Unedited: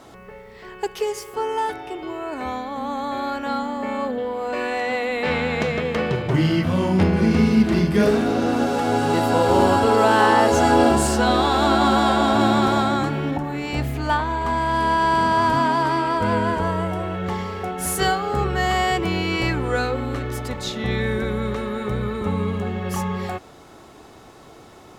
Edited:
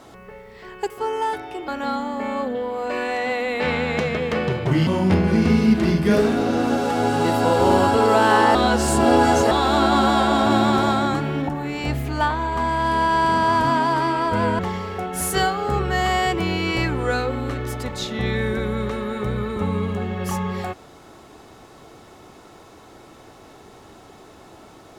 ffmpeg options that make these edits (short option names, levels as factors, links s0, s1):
-filter_complex "[0:a]asplit=7[s0][s1][s2][s3][s4][s5][s6];[s0]atrim=end=0.902[s7];[s1]atrim=start=1.258:end=2.042[s8];[s2]atrim=start=3.308:end=6.502[s9];[s3]atrim=start=6.758:end=10.442[s10];[s4]atrim=start=10.438:end=11.402,asetpts=PTS-STARTPTS,areverse[s11];[s5]atrim=start=11.398:end=16.482[s12];[s6]atrim=start=17.238[s13];[s7][s8]acrossfade=d=0.004:c1=hsin:c2=hsin[s14];[s14][s9]acrossfade=d=0.004:c1=hsin:c2=hsin[s15];[s15][s10]acrossfade=d=0.004:c1=hsin:c2=hsin[s16];[s16][s11]acrossfade=d=0.004:c1=hsin:c2=hsin[s17];[s17][s12]acrossfade=d=0.004:c1=hsin:c2=hsin[s18];[s18][s13]acrossfade=d=0.004:c1=hsin:c2=hsin"